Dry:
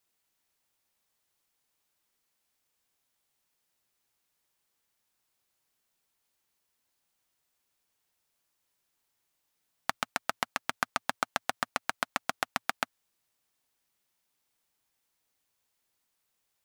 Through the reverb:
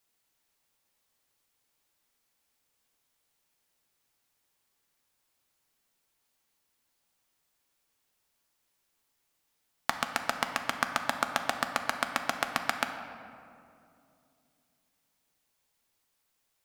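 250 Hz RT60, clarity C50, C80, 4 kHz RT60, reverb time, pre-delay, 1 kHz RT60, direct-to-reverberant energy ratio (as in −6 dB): 3.2 s, 7.5 dB, 8.5 dB, 1.3 s, 2.6 s, 4 ms, 2.4 s, 5.5 dB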